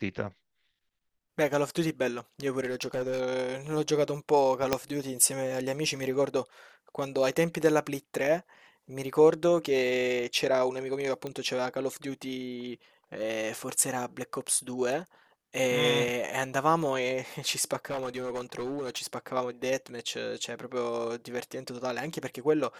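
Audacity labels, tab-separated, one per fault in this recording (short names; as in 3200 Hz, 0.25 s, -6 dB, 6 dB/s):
2.600000	3.210000	clipped -27 dBFS
4.730000	4.730000	pop -9 dBFS
11.270000	11.270000	pop -22 dBFS
17.770000	19.060000	clipped -29.5 dBFS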